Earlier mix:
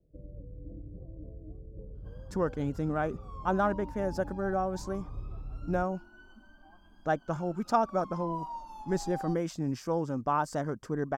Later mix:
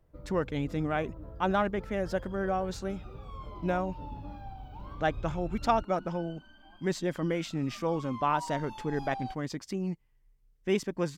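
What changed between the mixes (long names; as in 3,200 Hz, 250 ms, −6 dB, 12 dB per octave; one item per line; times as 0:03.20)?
speech: entry −2.05 s
first sound: remove Butterworth low-pass 560 Hz 36 dB per octave
master: add flat-topped bell 2,800 Hz +10.5 dB 1.3 octaves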